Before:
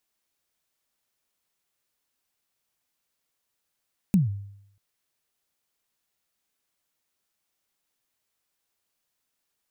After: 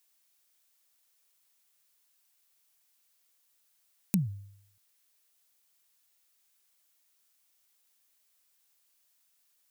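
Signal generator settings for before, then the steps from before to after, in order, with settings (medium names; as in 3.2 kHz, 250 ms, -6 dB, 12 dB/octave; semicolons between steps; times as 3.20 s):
kick drum length 0.64 s, from 210 Hz, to 100 Hz, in 147 ms, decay 0.75 s, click on, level -13.5 dB
tilt EQ +2.5 dB/octave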